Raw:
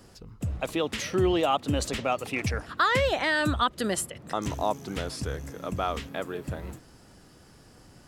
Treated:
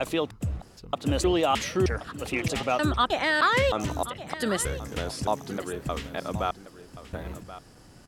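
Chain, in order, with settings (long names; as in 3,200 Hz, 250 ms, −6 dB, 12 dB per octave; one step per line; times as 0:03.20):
slices reordered back to front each 310 ms, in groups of 3
single-tap delay 1,078 ms −14.5 dB
level +1 dB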